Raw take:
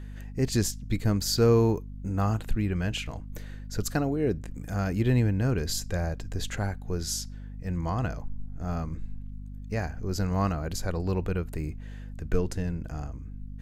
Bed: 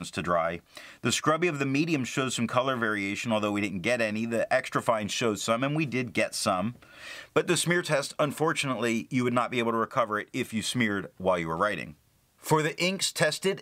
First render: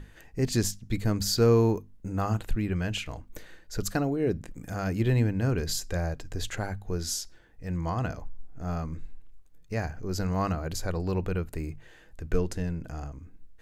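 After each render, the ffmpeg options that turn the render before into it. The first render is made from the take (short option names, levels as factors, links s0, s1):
-af "bandreject=f=50:t=h:w=6,bandreject=f=100:t=h:w=6,bandreject=f=150:t=h:w=6,bandreject=f=200:t=h:w=6,bandreject=f=250:t=h:w=6"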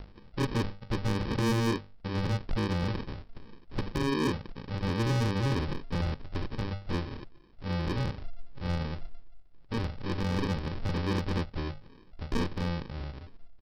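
-af "aresample=11025,acrusher=samples=16:mix=1:aa=0.000001,aresample=44100,asoftclip=type=hard:threshold=0.0631"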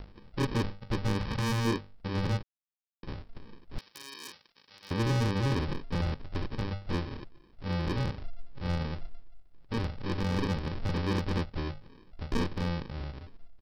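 -filter_complex "[0:a]asettb=1/sr,asplit=3[s0][s1][s2];[s0]atrim=end=1.194[s3];[s1]atrim=start=1.19:end=1.65,asetpts=PTS-STARTPTS,afade=t=in:d=0.004:c=qsin,afade=t=out:st=0.456:d=0.004:c=qsin,equalizer=f=340:w=1.5:g=-11[s4];[s2]atrim=start=1.646[s5];[s3][s4]acrossfade=d=0.004:c1=hsin:c2=qsin[s6];[s6][s5]acrossfade=d=0.004:c1=qsin:c2=hsin,asettb=1/sr,asplit=3[s7][s8][s9];[s7]atrim=end=3.784[s10];[s8]atrim=start=3.78:end=4.91,asetpts=PTS-STARTPTS,afade=t=in:d=0.004:c=qsin,afade=t=out:st=1.126:d=0.004:c=qsin,aderivative[s11];[s9]atrim=start=4.906[s12];[s10][s11]acrossfade=d=0.004:c1=hsin:c2=qsin[s13];[s13][s12]acrossfade=d=0.004:c1=qsin:c2=hsin,asplit=3[s14][s15][s16];[s14]atrim=end=2.43,asetpts=PTS-STARTPTS,afade=t=out:st=2.426:d=0.004:c=hsin[s17];[s15]atrim=start=2.43:end=3.03,asetpts=PTS-STARTPTS,volume=0[s18];[s16]atrim=start=3.03,asetpts=PTS-STARTPTS,afade=t=in:d=0.004:c=hsin[s19];[s17][s18][s19]concat=n=3:v=0:a=1"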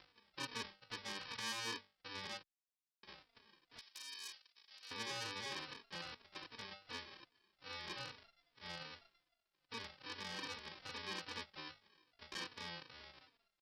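-filter_complex "[0:a]bandpass=f=4800:t=q:w=0.52:csg=0,asplit=2[s0][s1];[s1]adelay=3.4,afreqshift=-2.5[s2];[s0][s2]amix=inputs=2:normalize=1"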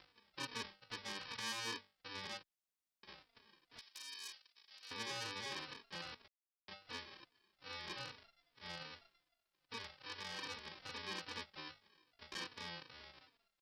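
-filter_complex "[0:a]asettb=1/sr,asplit=3[s0][s1][s2];[s0]atrim=end=9.764[s3];[s1]atrim=start=9.76:end=10.46,asetpts=PTS-STARTPTS,afade=t=in:d=0.004:c=qsin,afade=t=out:st=0.696:d=0.004:c=qsin,equalizer=f=240:w=1.5:g=-7[s4];[s2]atrim=start=10.456[s5];[s3][s4]acrossfade=d=0.004:c1=hsin:c2=qsin[s6];[s6][s5]acrossfade=d=0.004:c1=qsin:c2=hsin,asplit=3[s7][s8][s9];[s7]atrim=end=6.28,asetpts=PTS-STARTPTS,afade=t=out:st=6.276:d=0.004:c=hsin[s10];[s8]atrim=start=6.28:end=6.68,asetpts=PTS-STARTPTS,volume=0[s11];[s9]atrim=start=6.68,asetpts=PTS-STARTPTS,afade=t=in:d=0.004:c=hsin[s12];[s10][s11][s12]concat=n=3:v=0:a=1"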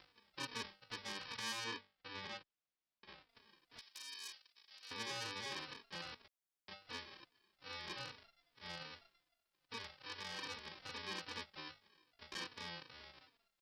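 -filter_complex "[0:a]asettb=1/sr,asplit=3[s0][s1][s2];[s0]atrim=end=1.644[s3];[s1]atrim=start=1.64:end=3.29,asetpts=PTS-STARTPTS,afade=t=in:d=0.004:c=qsin,afade=t=out:st=1.646:d=0.004:c=qsin,lowpass=4500[s4];[s2]atrim=start=3.286[s5];[s3][s4]acrossfade=d=0.004:c1=hsin:c2=qsin[s6];[s6][s5]acrossfade=d=0.004:c1=qsin:c2=hsin"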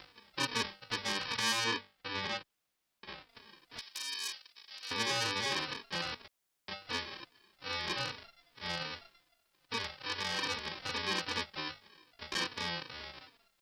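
-af "volume=3.55"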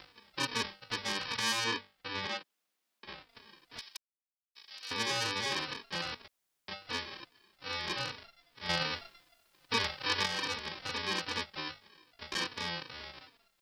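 -filter_complex "[0:a]asettb=1/sr,asplit=3[s0][s1][s2];[s0]atrim=end=2.274[s3];[s1]atrim=start=2.27:end=3.05,asetpts=PTS-STARTPTS,afade=t=in:d=0.004:c=qsin,afade=t=out:st=0.776:d=0.004:c=qsin,highpass=f=180:w=0.5412,highpass=f=180:w=1.3066[s4];[s2]atrim=start=3.046[s5];[s3][s4]acrossfade=d=0.004:c1=hsin:c2=qsin[s6];[s6][s5]acrossfade=d=0.004:c1=qsin:c2=hsin,asettb=1/sr,asplit=3[s7][s8][s9];[s7]atrim=end=8.694[s10];[s8]atrim=start=8.69:end=10.26,asetpts=PTS-STARTPTS,afade=t=in:d=0.004:c=qsin,afade=t=out:st=1.566:d=0.004:c=qsin,acontrast=58[s11];[s9]atrim=start=10.256[s12];[s10][s11]acrossfade=d=0.004:c1=hsin:c2=qsin[s13];[s13][s12]acrossfade=d=0.004:c1=qsin:c2=hsin,asplit=3[s14][s15][s16];[s14]atrim=end=3.97,asetpts=PTS-STARTPTS,afade=t=out:st=3.966:d=0.004:c=hsin[s17];[s15]atrim=start=3.97:end=4.55,asetpts=PTS-STARTPTS,volume=0[s18];[s16]atrim=start=4.55,asetpts=PTS-STARTPTS,afade=t=in:d=0.004:c=hsin[s19];[s17][s18][s19]concat=n=3:v=0:a=1"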